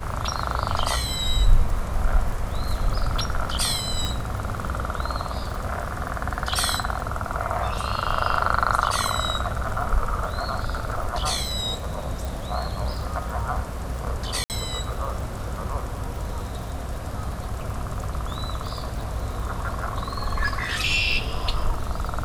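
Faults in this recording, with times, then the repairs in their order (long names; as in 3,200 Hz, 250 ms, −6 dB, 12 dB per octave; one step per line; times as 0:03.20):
surface crackle 54 per second −32 dBFS
0:04.05: click −12 dBFS
0:12.25: click
0:14.44–0:14.50: drop-out 58 ms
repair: click removal
repair the gap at 0:14.44, 58 ms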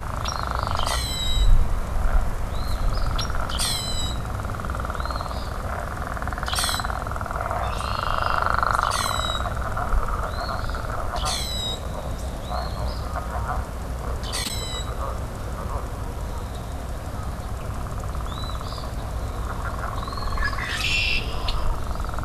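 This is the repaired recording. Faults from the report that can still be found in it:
none of them is left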